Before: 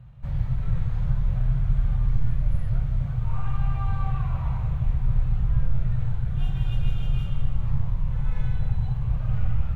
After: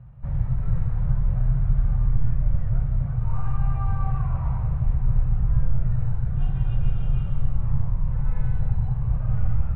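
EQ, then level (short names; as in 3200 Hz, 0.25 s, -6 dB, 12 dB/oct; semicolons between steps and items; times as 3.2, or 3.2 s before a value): LPF 1600 Hz 12 dB/oct; +1.5 dB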